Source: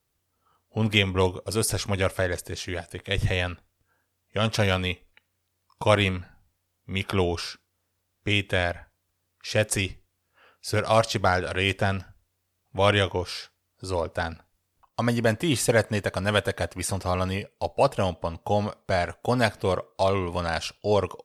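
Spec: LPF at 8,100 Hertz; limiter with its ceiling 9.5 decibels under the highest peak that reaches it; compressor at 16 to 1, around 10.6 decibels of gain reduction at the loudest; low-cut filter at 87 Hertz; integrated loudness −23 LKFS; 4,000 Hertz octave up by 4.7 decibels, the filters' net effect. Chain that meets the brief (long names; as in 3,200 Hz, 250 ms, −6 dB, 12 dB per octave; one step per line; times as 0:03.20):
high-pass filter 87 Hz
low-pass filter 8,100 Hz
parametric band 4,000 Hz +6.5 dB
downward compressor 16 to 1, threshold −24 dBFS
level +10 dB
brickwall limiter −8.5 dBFS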